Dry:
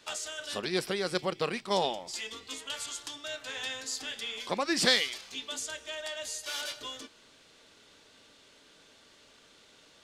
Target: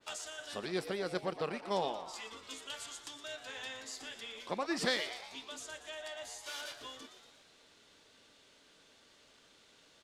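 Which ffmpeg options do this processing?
-filter_complex "[0:a]asplit=2[s0][s1];[s1]asplit=7[s2][s3][s4][s5][s6][s7][s8];[s2]adelay=118,afreqshift=110,volume=0.237[s9];[s3]adelay=236,afreqshift=220,volume=0.143[s10];[s4]adelay=354,afreqshift=330,volume=0.0851[s11];[s5]adelay=472,afreqshift=440,volume=0.0513[s12];[s6]adelay=590,afreqshift=550,volume=0.0309[s13];[s7]adelay=708,afreqshift=660,volume=0.0184[s14];[s8]adelay=826,afreqshift=770,volume=0.0111[s15];[s9][s10][s11][s12][s13][s14][s15]amix=inputs=7:normalize=0[s16];[s0][s16]amix=inputs=2:normalize=0,adynamicequalizer=threshold=0.00501:dfrequency=2200:dqfactor=0.7:tfrequency=2200:tqfactor=0.7:attack=5:release=100:ratio=0.375:range=3.5:mode=cutabove:tftype=highshelf,volume=0.562"

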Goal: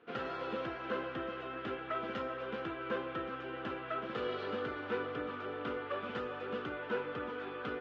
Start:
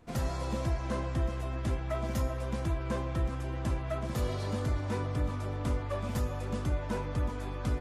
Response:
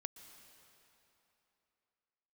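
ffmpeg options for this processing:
-af "highpass=370,equalizer=f=440:t=q:w=4:g=7,equalizer=f=630:t=q:w=4:g=-8,equalizer=f=960:t=q:w=4:g=-7,equalizer=f=1400:t=q:w=4:g=8,equalizer=f=2100:t=q:w=4:g=-3,equalizer=f=3000:t=q:w=4:g=5,lowpass=f=3200:w=0.5412,lowpass=f=3200:w=1.3066,volume=1.12"

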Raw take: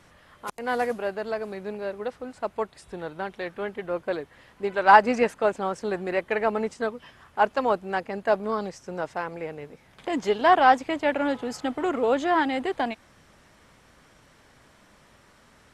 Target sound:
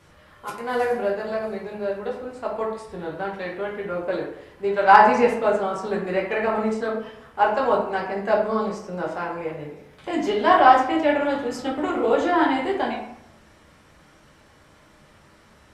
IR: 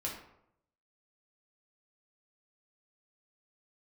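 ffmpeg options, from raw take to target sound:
-filter_complex "[1:a]atrim=start_sample=2205[s0];[0:a][s0]afir=irnorm=-1:irlink=0,asoftclip=type=hard:threshold=0.75,volume=1.12"

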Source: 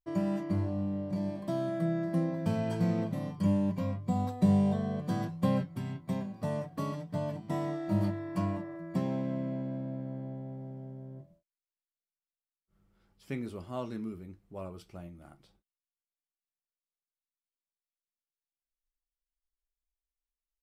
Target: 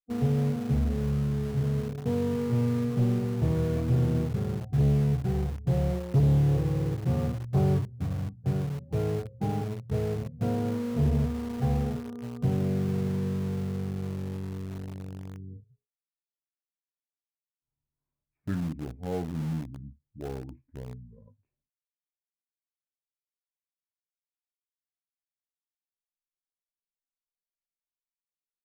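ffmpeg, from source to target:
-filter_complex "[0:a]lowpass=f=2200:p=1,afftdn=nr=24:nf=-46,equalizer=f=220:t=o:w=1.9:g=2.5,aresample=8000,asoftclip=type=tanh:threshold=0.0841,aresample=44100,asetrate=31752,aresample=44100,asplit=2[s0][s1];[s1]acrusher=bits=5:mix=0:aa=0.000001,volume=0.316[s2];[s0][s2]amix=inputs=2:normalize=0,volume=1.26"

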